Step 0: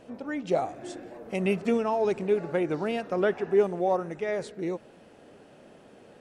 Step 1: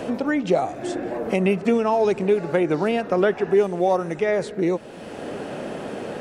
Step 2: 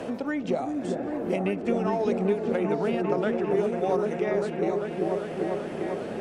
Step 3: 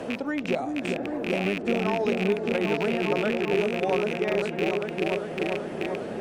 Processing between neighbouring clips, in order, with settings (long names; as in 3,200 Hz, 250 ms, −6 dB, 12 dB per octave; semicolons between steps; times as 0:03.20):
multiband upward and downward compressor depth 70%; level +6.5 dB
echo whose low-pass opens from repeat to repeat 396 ms, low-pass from 400 Hz, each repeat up 1 octave, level 0 dB; harmonic generator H 7 −34 dB, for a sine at −2.5 dBFS; multiband upward and downward compressor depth 40%; level −8 dB
loose part that buzzes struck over −33 dBFS, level −19 dBFS